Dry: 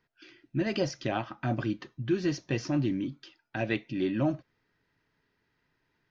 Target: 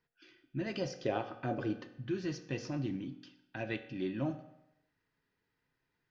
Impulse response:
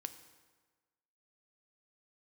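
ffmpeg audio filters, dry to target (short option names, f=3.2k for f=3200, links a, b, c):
-filter_complex "[0:a]asettb=1/sr,asplit=3[a][b][c];[a]atrim=end=0.914[d];[b]atrim=start=0.91:end=1.85,asetpts=PTS-STARTPTS,afade=t=in:d=0.004:c=qsin,afade=t=out:st=0.936:d=0.004:c=qsin,equalizer=f=450:t=o:w=0.68:g=13.5[e];[c]atrim=start=1.846[f];[d][e]acrossfade=d=0.004:c1=hsin:c2=qsin[g];[g][f]acrossfade=d=0.004:c1=qsin:c2=hsin[h];[1:a]atrim=start_sample=2205,asetrate=70560,aresample=44100[i];[h][i]afir=irnorm=-1:irlink=0"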